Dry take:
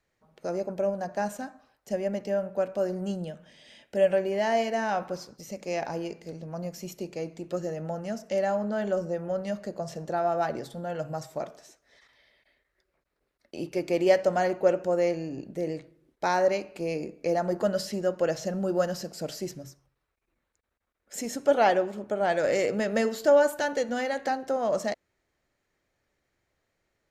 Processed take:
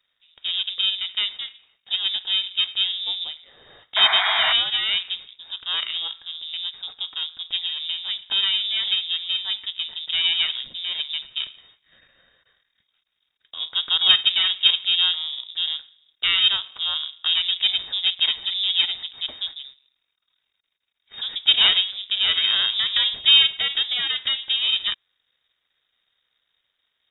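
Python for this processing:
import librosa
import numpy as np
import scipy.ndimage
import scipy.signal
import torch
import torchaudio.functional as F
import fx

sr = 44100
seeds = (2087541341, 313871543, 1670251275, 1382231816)

y = np.where(x < 0.0, 10.0 ** (-12.0 / 20.0) * x, x)
y = fx.freq_invert(y, sr, carrier_hz=3700)
y = fx.spec_paint(y, sr, seeds[0], shape='noise', start_s=3.96, length_s=0.57, low_hz=620.0, high_hz=2500.0, level_db=-30.0)
y = F.gain(torch.from_numpy(y), 6.5).numpy()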